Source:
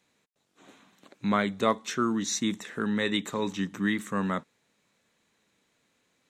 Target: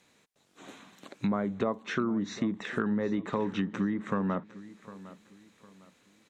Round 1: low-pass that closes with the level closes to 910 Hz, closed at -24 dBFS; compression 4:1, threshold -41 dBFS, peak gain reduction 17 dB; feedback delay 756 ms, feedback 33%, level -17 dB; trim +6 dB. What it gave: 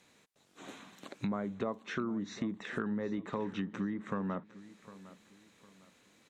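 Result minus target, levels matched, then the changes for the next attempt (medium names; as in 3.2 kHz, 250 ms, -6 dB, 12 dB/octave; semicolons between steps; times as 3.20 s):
compression: peak gain reduction +6 dB
change: compression 4:1, threshold -33 dBFS, peak gain reduction 11 dB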